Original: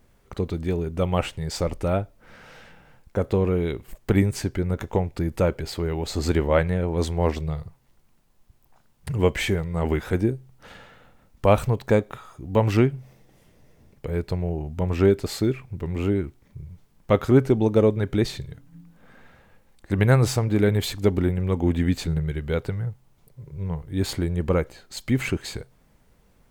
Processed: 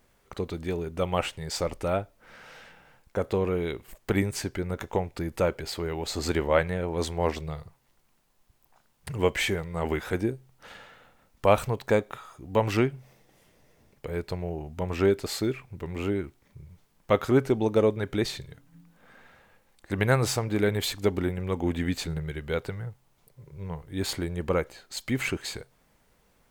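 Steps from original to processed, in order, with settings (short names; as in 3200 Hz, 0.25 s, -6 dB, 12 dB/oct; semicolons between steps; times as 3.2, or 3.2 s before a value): low shelf 330 Hz -9 dB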